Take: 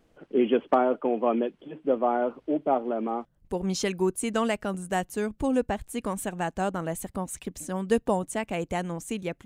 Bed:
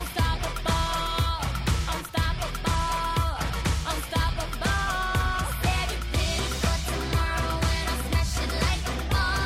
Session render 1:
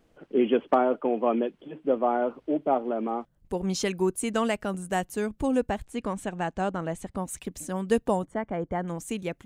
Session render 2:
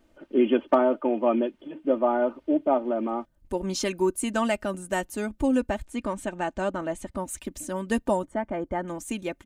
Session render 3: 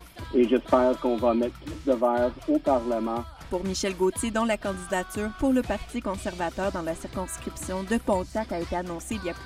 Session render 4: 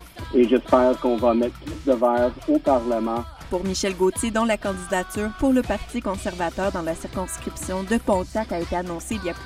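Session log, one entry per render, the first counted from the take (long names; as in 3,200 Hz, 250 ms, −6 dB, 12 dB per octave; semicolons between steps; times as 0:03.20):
0:05.84–0:07.17: high-frequency loss of the air 66 metres; 0:08.25–0:08.88: Savitzky-Golay smoothing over 41 samples
comb filter 3.3 ms, depth 61%
mix in bed −15.5 dB
level +4 dB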